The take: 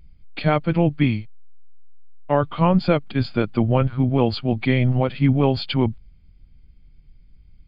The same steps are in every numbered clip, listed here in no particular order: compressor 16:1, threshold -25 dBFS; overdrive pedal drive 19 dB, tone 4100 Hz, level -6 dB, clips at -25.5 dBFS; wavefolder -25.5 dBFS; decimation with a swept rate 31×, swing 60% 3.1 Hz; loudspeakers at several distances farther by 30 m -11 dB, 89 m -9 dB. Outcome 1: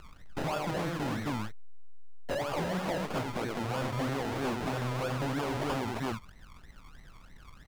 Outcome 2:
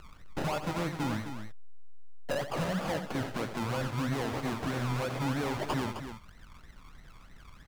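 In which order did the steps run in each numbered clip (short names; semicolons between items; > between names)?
loudspeakers at several distances > decimation with a swept rate > compressor > wavefolder > overdrive pedal; decimation with a swept rate > compressor > overdrive pedal > wavefolder > loudspeakers at several distances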